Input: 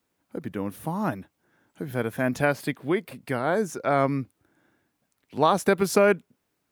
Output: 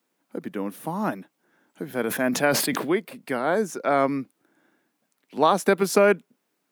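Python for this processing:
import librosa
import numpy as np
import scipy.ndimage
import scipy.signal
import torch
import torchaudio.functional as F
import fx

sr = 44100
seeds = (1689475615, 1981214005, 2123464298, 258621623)

y = scipy.signal.sosfilt(scipy.signal.butter(4, 180.0, 'highpass', fs=sr, output='sos'), x)
y = fx.sustainer(y, sr, db_per_s=50.0, at=(2.03, 2.95), fade=0.02)
y = F.gain(torch.from_numpy(y), 1.5).numpy()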